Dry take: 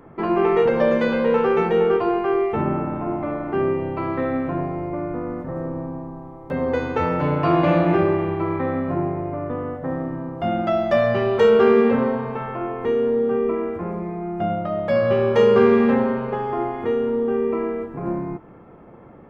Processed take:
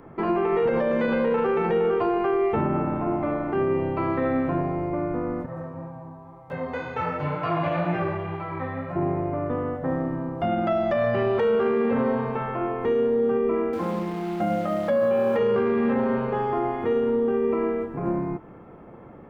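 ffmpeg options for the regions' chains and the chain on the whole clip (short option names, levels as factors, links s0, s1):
-filter_complex "[0:a]asettb=1/sr,asplit=3[s0][s1][s2];[s0]atrim=end=5.464[s3];[s1]atrim=start=5.46:end=8.96,asetpts=PTS-STARTPTS,afade=t=in:d=0.004:c=qsin,afade=t=out:st=3.496:d=0.004:c=qsin,highpass=72,equalizer=f=310:t=o:w=1.3:g=-10,flanger=delay=16.5:depth=3.6:speed=2[s4];[s2]atrim=start=8.956[s5];[s3][s4]acrossfade=d=0.004:c1=hsin:c2=qsin[s6];[s6][s5]acrossfade=d=0.004:c1=qsin:c2=hsin,asettb=1/sr,asplit=3[s7][s8][s9];[s7]atrim=end=13.734[s10];[s8]atrim=start=13.73:end=15.39,asetpts=PTS-STARTPTS,afade=t=in:d=0.004:c=qsin,afade=t=out:st=1.656:d=0.004:c=qsin,highpass=110,aecho=1:1:3.8:0.71,atrim=end_sample=73206,acrusher=bits=7:dc=4:mix=0:aa=0.000001[s11];[s9]atrim=start=15.386[s12];[s10][s11]acrossfade=d=0.004:c1=hsin:c2=qsin[s13];[s13][s12]acrossfade=d=0.004:c1=qsin:c2=hsin,acrossover=split=3300[s14][s15];[s15]acompressor=threshold=0.00178:ratio=4:attack=1:release=60[s16];[s14][s16]amix=inputs=2:normalize=0,alimiter=limit=0.168:level=0:latency=1:release=35"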